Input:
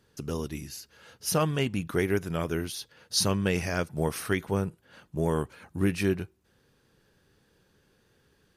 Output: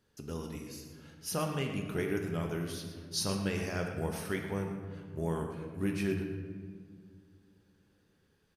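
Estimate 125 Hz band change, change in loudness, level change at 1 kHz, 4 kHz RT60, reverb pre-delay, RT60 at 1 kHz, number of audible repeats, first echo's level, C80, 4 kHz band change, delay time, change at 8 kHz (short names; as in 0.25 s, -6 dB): -5.5 dB, -6.5 dB, -6.5 dB, 1.0 s, 4 ms, 1.6 s, 1, -10.5 dB, 5.5 dB, -7.0 dB, 0.116 s, -7.5 dB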